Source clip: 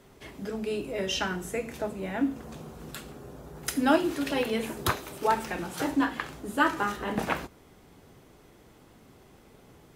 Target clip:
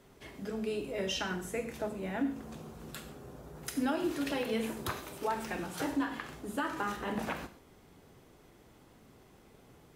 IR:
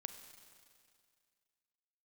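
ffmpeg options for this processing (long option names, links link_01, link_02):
-filter_complex "[0:a]alimiter=limit=-19.5dB:level=0:latency=1:release=102[link_01];[1:a]atrim=start_sample=2205,atrim=end_sample=6174[link_02];[link_01][link_02]afir=irnorm=-1:irlink=0"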